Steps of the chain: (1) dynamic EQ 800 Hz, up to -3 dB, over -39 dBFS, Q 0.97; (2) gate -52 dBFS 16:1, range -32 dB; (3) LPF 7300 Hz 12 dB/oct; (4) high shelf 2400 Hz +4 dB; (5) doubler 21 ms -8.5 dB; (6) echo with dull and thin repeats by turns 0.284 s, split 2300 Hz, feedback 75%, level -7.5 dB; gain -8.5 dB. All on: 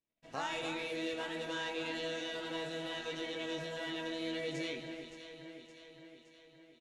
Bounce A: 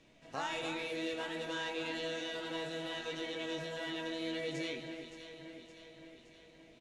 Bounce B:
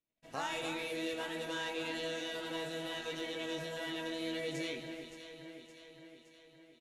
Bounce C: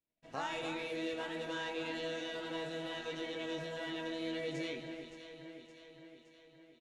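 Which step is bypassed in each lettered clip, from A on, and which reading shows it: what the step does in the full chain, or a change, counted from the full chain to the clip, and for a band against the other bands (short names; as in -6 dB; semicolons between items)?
2, momentary loudness spread change +1 LU; 3, 8 kHz band +2.5 dB; 4, 8 kHz band -3.0 dB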